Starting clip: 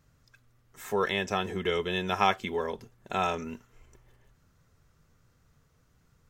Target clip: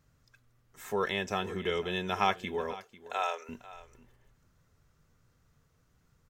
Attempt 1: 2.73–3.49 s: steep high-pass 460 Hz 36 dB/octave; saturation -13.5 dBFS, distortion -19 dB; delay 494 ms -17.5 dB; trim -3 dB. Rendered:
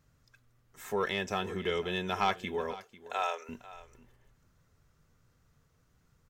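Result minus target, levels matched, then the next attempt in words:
saturation: distortion +19 dB
2.73–3.49 s: steep high-pass 460 Hz 36 dB/octave; saturation -2 dBFS, distortion -38 dB; delay 494 ms -17.5 dB; trim -3 dB

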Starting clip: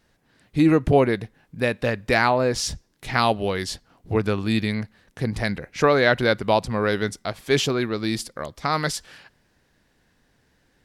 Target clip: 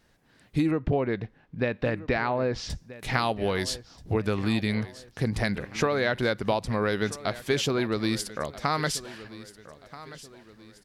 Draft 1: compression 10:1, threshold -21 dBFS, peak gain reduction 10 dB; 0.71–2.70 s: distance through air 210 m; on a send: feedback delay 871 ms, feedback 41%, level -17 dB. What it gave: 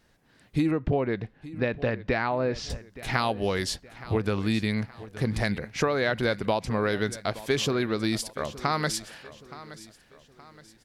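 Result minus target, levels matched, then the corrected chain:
echo 411 ms early
compression 10:1, threshold -21 dBFS, peak gain reduction 10 dB; 0.71–2.70 s: distance through air 210 m; on a send: feedback delay 1282 ms, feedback 41%, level -17 dB

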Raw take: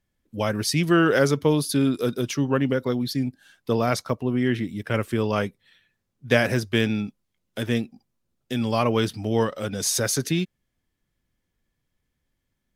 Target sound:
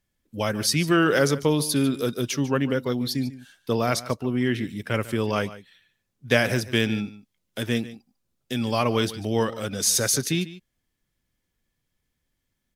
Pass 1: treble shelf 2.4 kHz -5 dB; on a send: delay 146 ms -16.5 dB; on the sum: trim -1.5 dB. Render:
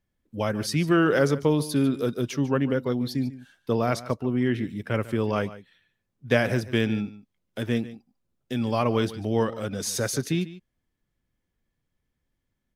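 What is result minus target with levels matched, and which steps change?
4 kHz band -5.5 dB
change: treble shelf 2.4 kHz +5 dB

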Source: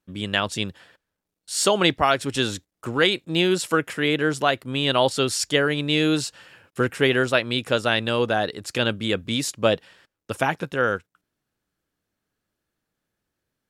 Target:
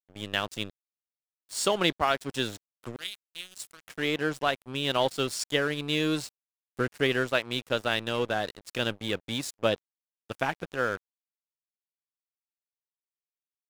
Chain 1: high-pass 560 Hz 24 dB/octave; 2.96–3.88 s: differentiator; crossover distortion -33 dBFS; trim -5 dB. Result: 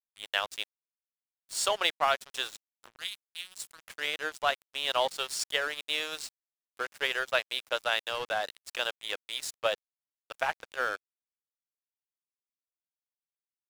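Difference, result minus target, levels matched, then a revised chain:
500 Hz band -3.0 dB
2.96–3.88 s: differentiator; crossover distortion -33 dBFS; trim -5 dB

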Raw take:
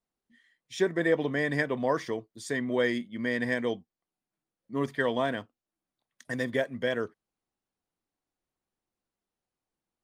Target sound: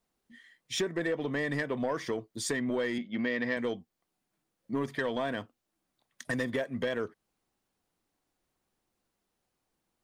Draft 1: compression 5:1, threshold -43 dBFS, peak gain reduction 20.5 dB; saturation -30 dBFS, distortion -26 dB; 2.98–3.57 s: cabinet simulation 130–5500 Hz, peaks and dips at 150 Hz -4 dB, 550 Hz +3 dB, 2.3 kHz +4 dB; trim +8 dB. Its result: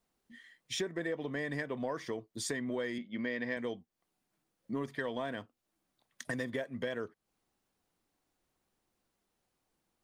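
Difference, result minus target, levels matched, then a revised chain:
compression: peak gain reduction +6 dB
compression 5:1, threshold -35.5 dBFS, peak gain reduction 14.5 dB; saturation -30 dBFS, distortion -17 dB; 2.98–3.57 s: cabinet simulation 130–5500 Hz, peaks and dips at 150 Hz -4 dB, 550 Hz +3 dB, 2.3 kHz +4 dB; trim +8 dB

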